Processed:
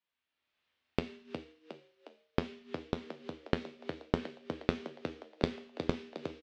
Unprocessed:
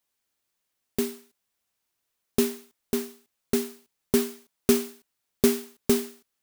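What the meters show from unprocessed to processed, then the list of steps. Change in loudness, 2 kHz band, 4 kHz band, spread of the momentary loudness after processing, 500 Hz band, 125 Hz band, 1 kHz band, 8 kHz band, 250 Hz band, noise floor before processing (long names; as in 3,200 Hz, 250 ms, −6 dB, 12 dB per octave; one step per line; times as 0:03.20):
−12.0 dB, −4.5 dB, −9.0 dB, 10 LU, −10.5 dB, −0.5 dB, 0.0 dB, below −25 dB, −10.5 dB, −80 dBFS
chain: high-pass filter 65 Hz 6 dB per octave
low-shelf EQ 180 Hz +5 dB
four-comb reverb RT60 0.48 s, combs from 25 ms, DRR 0.5 dB
noise gate −54 dBFS, range −8 dB
automatic gain control gain up to 10 dB
low-pass filter 3,500 Hz 24 dB per octave
gate with flip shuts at −21 dBFS, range −24 dB
tilt shelving filter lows −5 dB, about 1,300 Hz
tuned comb filter 86 Hz, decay 0.18 s, harmonics all, mix 70%
echo with shifted repeats 360 ms, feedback 49%, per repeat +72 Hz, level −8 dB
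level +5 dB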